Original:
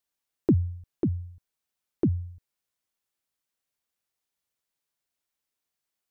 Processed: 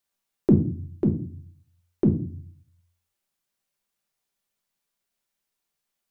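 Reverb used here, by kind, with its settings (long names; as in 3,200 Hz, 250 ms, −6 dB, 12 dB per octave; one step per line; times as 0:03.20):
rectangular room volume 310 cubic metres, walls furnished, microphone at 1.2 metres
level +2 dB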